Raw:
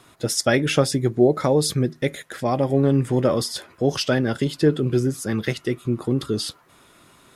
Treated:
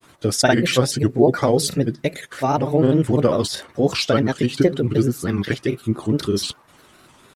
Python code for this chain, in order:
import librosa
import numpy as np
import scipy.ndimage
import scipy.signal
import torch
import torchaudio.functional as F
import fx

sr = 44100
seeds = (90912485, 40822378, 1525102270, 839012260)

y = fx.granulator(x, sr, seeds[0], grain_ms=100.0, per_s=20.0, spray_ms=35.0, spread_st=3)
y = y * 10.0 ** (3.5 / 20.0)